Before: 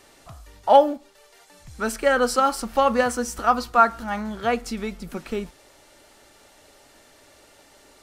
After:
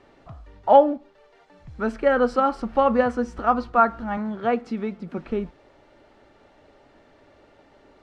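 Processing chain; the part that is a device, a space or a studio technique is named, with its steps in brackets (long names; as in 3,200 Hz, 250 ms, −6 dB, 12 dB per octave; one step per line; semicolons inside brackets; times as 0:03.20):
phone in a pocket (low-pass filter 3,700 Hz 12 dB per octave; parametric band 200 Hz +3 dB 2.9 octaves; high-shelf EQ 2,200 Hz −10 dB)
0:04.17–0:05.18: high-pass filter 140 Hz 12 dB per octave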